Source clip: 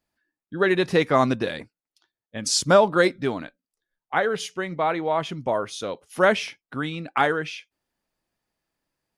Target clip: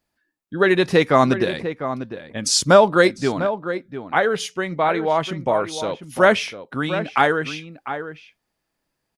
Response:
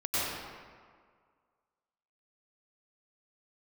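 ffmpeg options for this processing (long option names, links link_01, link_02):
-filter_complex "[0:a]asplit=2[link_01][link_02];[link_02]adelay=699.7,volume=-10dB,highshelf=frequency=4000:gain=-15.7[link_03];[link_01][link_03]amix=inputs=2:normalize=0,volume=4dB"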